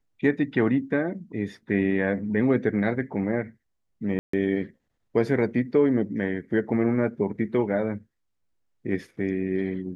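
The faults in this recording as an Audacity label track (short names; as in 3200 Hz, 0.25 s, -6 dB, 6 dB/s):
4.190000	4.330000	gap 0.144 s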